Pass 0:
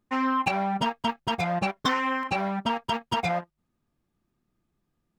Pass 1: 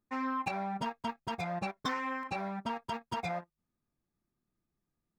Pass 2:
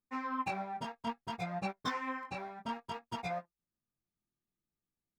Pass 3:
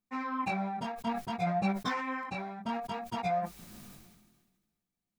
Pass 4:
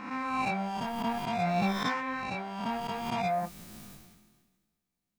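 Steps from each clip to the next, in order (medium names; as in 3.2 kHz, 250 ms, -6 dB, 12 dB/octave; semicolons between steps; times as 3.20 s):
band-stop 3 kHz, Q 5.3; trim -9 dB
chorus 0.59 Hz, delay 15.5 ms, depth 7.7 ms; upward expansion 1.5:1, over -50 dBFS; trim +2 dB
small resonant body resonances 200/710/2300/3900 Hz, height 9 dB, ringing for 75 ms; decay stretcher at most 40 dB/s; trim +1 dB
reverse spectral sustain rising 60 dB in 1.07 s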